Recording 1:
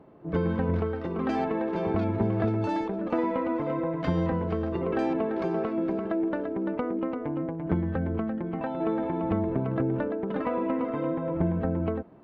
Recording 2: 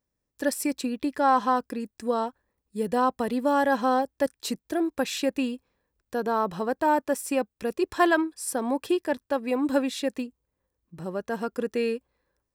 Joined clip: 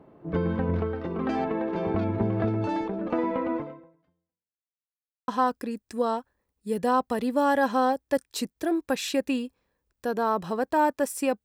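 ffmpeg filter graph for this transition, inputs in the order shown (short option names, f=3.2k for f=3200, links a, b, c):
-filter_complex "[0:a]apad=whole_dur=11.44,atrim=end=11.44,asplit=2[a][b];[a]atrim=end=4.7,asetpts=PTS-STARTPTS,afade=t=out:st=3.57:d=1.13:c=exp[c];[b]atrim=start=4.7:end=5.28,asetpts=PTS-STARTPTS,volume=0[d];[1:a]atrim=start=1.37:end=7.53,asetpts=PTS-STARTPTS,afade=t=in:d=0.004:c=hsin[e];[c][d][e]concat=n=3:v=0:a=1"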